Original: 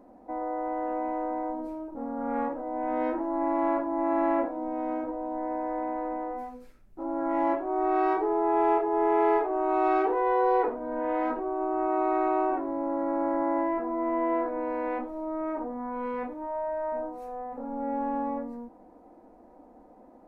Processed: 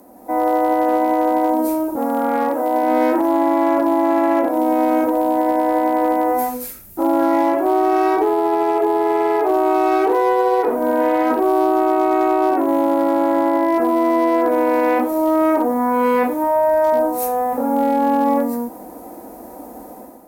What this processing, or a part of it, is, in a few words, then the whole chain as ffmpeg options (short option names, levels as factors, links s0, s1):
FM broadcast chain: -filter_complex "[0:a]highpass=53,dynaudnorm=f=130:g=5:m=3.16,acrossover=split=170|670[s0][s1][s2];[s0]acompressor=threshold=0.00316:ratio=4[s3];[s1]acompressor=threshold=0.1:ratio=4[s4];[s2]acompressor=threshold=0.0447:ratio=4[s5];[s3][s4][s5]amix=inputs=3:normalize=0,aemphasis=mode=production:type=50fm,alimiter=limit=0.158:level=0:latency=1:release=57,asoftclip=type=hard:threshold=0.141,lowpass=f=15000:w=0.5412,lowpass=f=15000:w=1.3066,aemphasis=mode=production:type=50fm,asettb=1/sr,asplit=3[s6][s7][s8];[s6]atrim=end=1.964[s9];[s7]atrim=start=1.96:end=2.83,asetpts=PTS-STARTPTS,afade=t=in:d=0.004:c=qsin,afade=t=out:st=0.866:d=0.004:c=qsin,highpass=f=290:p=1[s10];[s8]atrim=start=2.826[s11];[s9][s10]acrossfade=d=0.004:c1=hsin:c2=qsin[s12];[s12][s11]acrossfade=d=0.004:c1=qsin:c2=hsin,volume=2.51"